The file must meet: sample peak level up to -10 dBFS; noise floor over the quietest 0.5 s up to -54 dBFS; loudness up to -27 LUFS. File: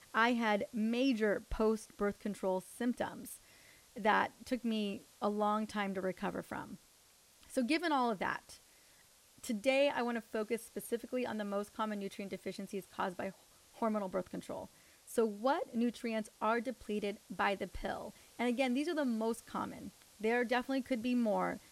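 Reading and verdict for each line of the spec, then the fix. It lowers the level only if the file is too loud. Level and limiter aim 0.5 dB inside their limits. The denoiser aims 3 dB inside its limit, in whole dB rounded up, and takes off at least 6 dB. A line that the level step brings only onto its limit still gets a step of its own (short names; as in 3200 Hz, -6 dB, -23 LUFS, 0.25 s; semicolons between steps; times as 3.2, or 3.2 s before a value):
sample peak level -17.0 dBFS: OK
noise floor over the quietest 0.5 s -65 dBFS: OK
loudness -36.5 LUFS: OK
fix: none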